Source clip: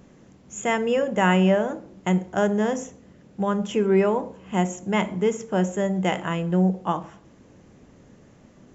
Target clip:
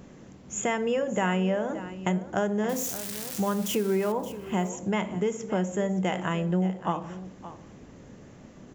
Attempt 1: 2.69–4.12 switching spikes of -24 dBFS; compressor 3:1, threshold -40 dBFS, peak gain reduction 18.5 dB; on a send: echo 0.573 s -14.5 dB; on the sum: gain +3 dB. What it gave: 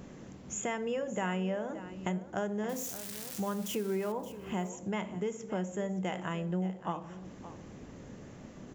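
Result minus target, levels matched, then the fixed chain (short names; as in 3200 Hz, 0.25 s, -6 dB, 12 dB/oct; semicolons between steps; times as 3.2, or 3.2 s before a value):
compressor: peak gain reduction +7.5 dB
2.69–4.12 switching spikes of -24 dBFS; compressor 3:1, threshold -29 dBFS, peak gain reduction 11 dB; on a send: echo 0.573 s -14.5 dB; on the sum: gain +3 dB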